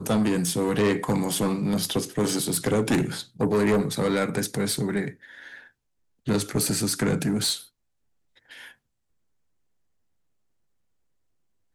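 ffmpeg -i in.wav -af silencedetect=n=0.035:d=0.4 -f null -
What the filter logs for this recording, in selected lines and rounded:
silence_start: 5.09
silence_end: 6.28 | silence_duration: 1.18
silence_start: 7.61
silence_end: 11.74 | silence_duration: 4.13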